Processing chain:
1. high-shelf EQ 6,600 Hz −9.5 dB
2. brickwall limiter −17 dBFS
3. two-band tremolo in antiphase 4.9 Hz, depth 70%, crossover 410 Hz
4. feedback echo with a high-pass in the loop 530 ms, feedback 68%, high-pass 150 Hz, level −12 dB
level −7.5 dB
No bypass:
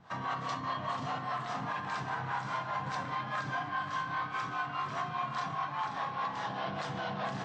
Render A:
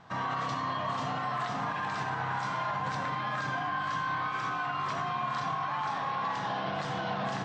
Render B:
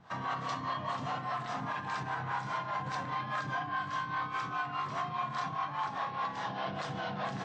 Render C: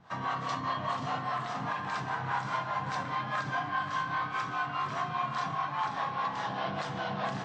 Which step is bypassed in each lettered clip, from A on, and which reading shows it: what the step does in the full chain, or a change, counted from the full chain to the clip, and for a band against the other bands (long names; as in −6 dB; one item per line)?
3, change in crest factor −3.0 dB
4, echo-to-direct ratio −9.5 dB to none audible
2, average gain reduction 2.5 dB